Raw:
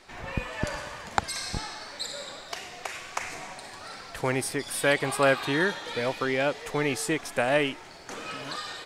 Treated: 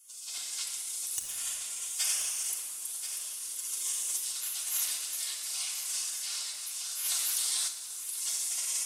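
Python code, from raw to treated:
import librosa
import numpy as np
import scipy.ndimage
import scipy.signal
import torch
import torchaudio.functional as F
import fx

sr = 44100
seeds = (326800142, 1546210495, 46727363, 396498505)

y = fx.bin_compress(x, sr, power=0.6)
y = fx.recorder_agc(y, sr, target_db=-7.0, rise_db_per_s=22.0, max_gain_db=30)
y = fx.bandpass_q(y, sr, hz=5600.0, q=0.71)
y = fx.spec_gate(y, sr, threshold_db=-15, keep='weak')
y = np.diff(y, prepend=0.0)
y = y + 0.43 * np.pad(y, (int(6.6 * sr / 1000.0), 0))[:len(y)]
y = 10.0 ** (-21.5 / 20.0) * (np.abs((y / 10.0 ** (-21.5 / 20.0) + 3.0) % 4.0 - 2.0) - 1.0)
y = y + 10.0 ** (-10.5 / 20.0) * np.pad(y, (int(1033 * sr / 1000.0), 0))[:len(y)]
y = fx.room_shoebox(y, sr, seeds[0], volume_m3=3800.0, walls='mixed', distance_m=3.3)
y = fx.env_flatten(y, sr, amount_pct=70, at=(7.04, 7.67), fade=0.02)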